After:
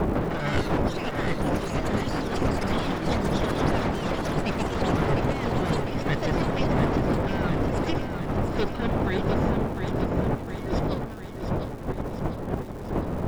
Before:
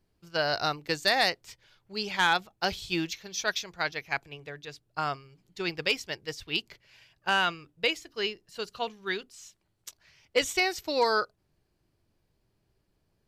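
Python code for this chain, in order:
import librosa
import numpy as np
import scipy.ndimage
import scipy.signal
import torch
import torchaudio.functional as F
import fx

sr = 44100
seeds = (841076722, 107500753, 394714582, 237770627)

p1 = fx.lower_of_two(x, sr, delay_ms=0.56)
p2 = fx.dmg_wind(p1, sr, seeds[0], corner_hz=620.0, level_db=-29.0)
p3 = scipy.signal.sosfilt(scipy.signal.butter(2, 3100.0, 'lowpass', fs=sr, output='sos'), p2)
p4 = fx.low_shelf(p3, sr, hz=410.0, db=9.5)
p5 = fx.over_compress(p4, sr, threshold_db=-29.0, ratio=-0.5)
p6 = fx.echo_pitch(p5, sr, ms=153, semitones=6, count=3, db_per_echo=-3.0)
p7 = p6 + fx.echo_feedback(p6, sr, ms=703, feedback_pct=59, wet_db=-7, dry=0)
y = fx.dmg_crackle(p7, sr, seeds[1], per_s=480.0, level_db=-41.0)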